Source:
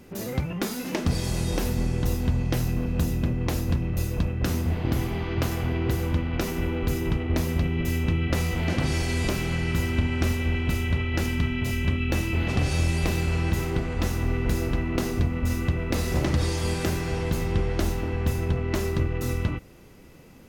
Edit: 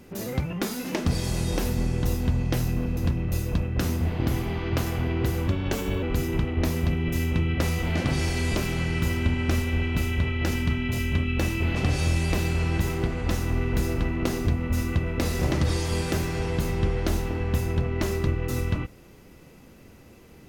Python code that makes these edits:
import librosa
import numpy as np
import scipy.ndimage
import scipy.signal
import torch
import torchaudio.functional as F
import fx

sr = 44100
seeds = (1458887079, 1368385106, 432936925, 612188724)

y = fx.edit(x, sr, fx.cut(start_s=2.97, length_s=0.65),
    fx.speed_span(start_s=6.13, length_s=0.62, speed=1.14), tone=tone)